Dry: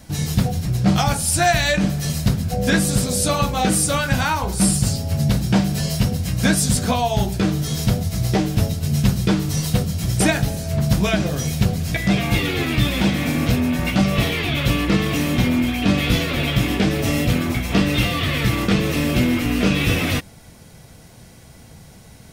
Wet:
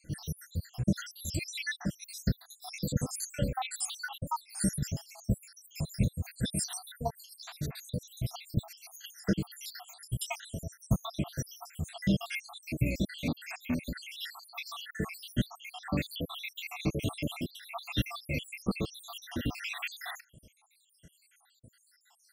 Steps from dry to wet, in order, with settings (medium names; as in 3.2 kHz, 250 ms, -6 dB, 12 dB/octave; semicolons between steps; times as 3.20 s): random holes in the spectrogram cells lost 80%; trim -8.5 dB